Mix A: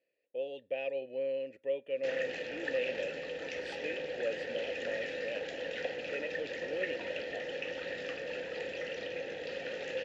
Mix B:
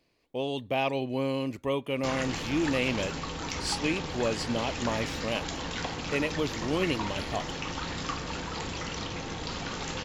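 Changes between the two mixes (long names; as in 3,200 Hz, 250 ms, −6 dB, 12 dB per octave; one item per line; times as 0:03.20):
background −8.5 dB
master: remove formant filter e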